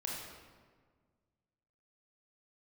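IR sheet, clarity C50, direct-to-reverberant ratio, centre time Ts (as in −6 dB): 0.0 dB, −3.0 dB, 81 ms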